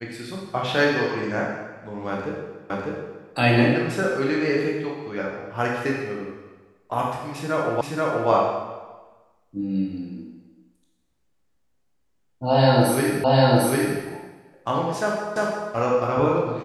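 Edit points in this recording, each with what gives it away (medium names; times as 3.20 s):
2.70 s: repeat of the last 0.6 s
7.81 s: repeat of the last 0.48 s
13.24 s: repeat of the last 0.75 s
15.36 s: repeat of the last 0.35 s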